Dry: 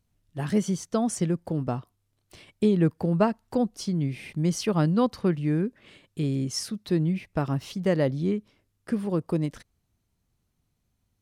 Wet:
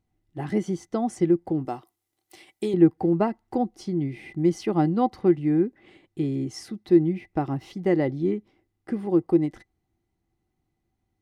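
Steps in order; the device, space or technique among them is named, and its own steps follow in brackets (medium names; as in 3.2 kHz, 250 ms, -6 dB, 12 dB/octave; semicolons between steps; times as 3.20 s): 1.65–2.74 s: RIAA curve recording; inside a helmet (treble shelf 4.1 kHz -8 dB; small resonant body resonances 340/770/2000 Hz, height 15 dB, ringing for 60 ms); trim -3.5 dB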